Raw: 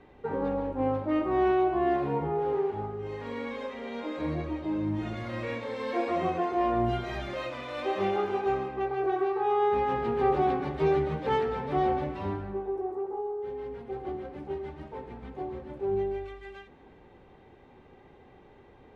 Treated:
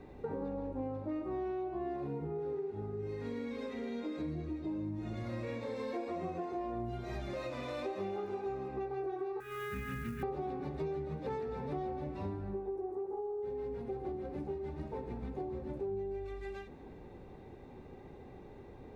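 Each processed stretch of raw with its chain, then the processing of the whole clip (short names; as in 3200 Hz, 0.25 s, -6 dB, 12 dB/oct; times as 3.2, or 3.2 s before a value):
2.07–4.67 bell 870 Hz -9 dB 0.4 oct + notch comb 570 Hz
9.4–10.23 EQ curve 220 Hz 0 dB, 340 Hz -12 dB, 530 Hz -22 dB, 810 Hz -30 dB, 1400 Hz +6 dB, 3000 Hz +3 dB, 6600 Hz -25 dB + companded quantiser 6-bit
whole clip: bell 1600 Hz -8.5 dB 2.7 oct; notch 3100 Hz, Q 7.5; compressor 6:1, threshold -42 dBFS; gain +5.5 dB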